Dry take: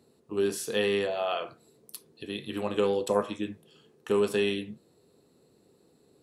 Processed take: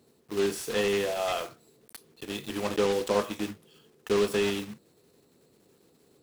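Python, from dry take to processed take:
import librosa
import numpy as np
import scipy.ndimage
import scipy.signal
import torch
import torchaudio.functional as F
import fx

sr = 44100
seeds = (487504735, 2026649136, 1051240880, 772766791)

y = fx.block_float(x, sr, bits=3)
y = fx.slew_limit(y, sr, full_power_hz=140.0)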